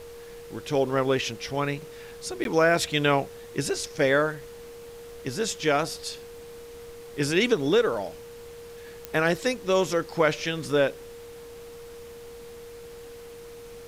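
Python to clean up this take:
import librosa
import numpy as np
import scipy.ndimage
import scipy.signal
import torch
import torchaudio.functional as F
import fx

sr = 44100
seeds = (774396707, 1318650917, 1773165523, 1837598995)

y = fx.fix_declick_ar(x, sr, threshold=10.0)
y = fx.notch(y, sr, hz=470.0, q=30.0)
y = fx.fix_interpolate(y, sr, at_s=(2.44,), length_ms=12.0)
y = fx.noise_reduce(y, sr, print_start_s=13.21, print_end_s=13.71, reduce_db=27.0)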